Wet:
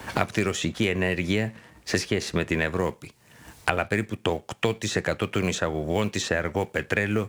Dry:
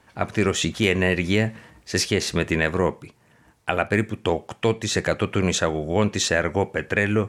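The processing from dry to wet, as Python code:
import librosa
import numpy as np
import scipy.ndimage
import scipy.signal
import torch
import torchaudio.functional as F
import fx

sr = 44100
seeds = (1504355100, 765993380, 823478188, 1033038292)

y = fx.law_mismatch(x, sr, coded='A')
y = fx.band_squash(y, sr, depth_pct=100)
y = F.gain(torch.from_numpy(y), -4.0).numpy()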